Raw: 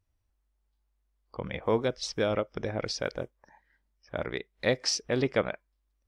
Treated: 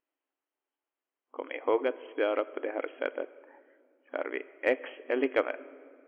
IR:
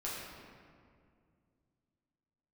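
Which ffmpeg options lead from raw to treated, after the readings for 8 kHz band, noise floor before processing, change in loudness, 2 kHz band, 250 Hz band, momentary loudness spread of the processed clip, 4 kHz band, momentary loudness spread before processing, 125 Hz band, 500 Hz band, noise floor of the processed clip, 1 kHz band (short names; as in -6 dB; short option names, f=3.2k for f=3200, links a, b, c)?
under -35 dB, -76 dBFS, -1.5 dB, +0.5 dB, -2.5 dB, 13 LU, -13.5 dB, 12 LU, under -30 dB, 0.0 dB, under -85 dBFS, +0.5 dB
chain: -filter_complex "[0:a]asplit=2[a][b];[1:a]atrim=start_sample=2205,highshelf=f=5.8k:g=9[c];[b][c]afir=irnorm=-1:irlink=0,volume=-17.5dB[d];[a][d]amix=inputs=2:normalize=0,afftfilt=real='re*between(b*sr/4096,250,3300)':imag='im*between(b*sr/4096,250,3300)':win_size=4096:overlap=0.75,aeval=exprs='0.282*(cos(1*acos(clip(val(0)/0.282,-1,1)))-cos(1*PI/2))+0.00794*(cos(3*acos(clip(val(0)/0.282,-1,1)))-cos(3*PI/2))+0.00708*(cos(4*acos(clip(val(0)/0.282,-1,1)))-cos(4*PI/2))+0.00398*(cos(6*acos(clip(val(0)/0.282,-1,1)))-cos(6*PI/2))':c=same"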